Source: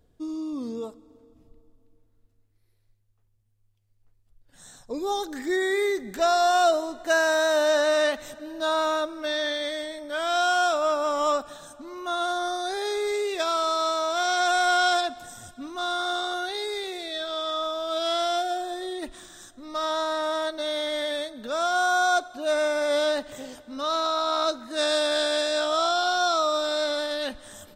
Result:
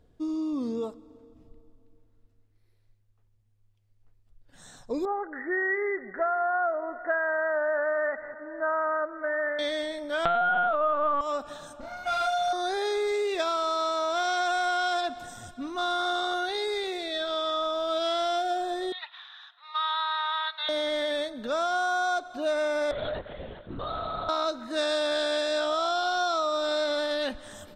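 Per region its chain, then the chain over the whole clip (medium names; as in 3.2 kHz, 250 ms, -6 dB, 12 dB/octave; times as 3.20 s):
5.05–9.59 s: rippled Chebyshev low-pass 2 kHz, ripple 6 dB + tilt shelf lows -8.5 dB, about 660 Hz + delay 488 ms -24 dB
10.25–11.21 s: peaking EQ 1.1 kHz +15 dB 2.8 oct + LPC vocoder at 8 kHz pitch kept
11.80–12.53 s: comb filter that takes the minimum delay 1.4 ms + doubling 28 ms -2.5 dB
18.92–20.69 s: Chebyshev band-pass 850–3900 Hz, order 4 + treble shelf 3.2 kHz +8.5 dB
22.91–24.29 s: compression 2:1, threshold -38 dBFS + LPC vocoder at 8 kHz whisper
whole clip: treble shelf 6.9 kHz -11 dB; compression, threshold -26 dBFS; trim +2 dB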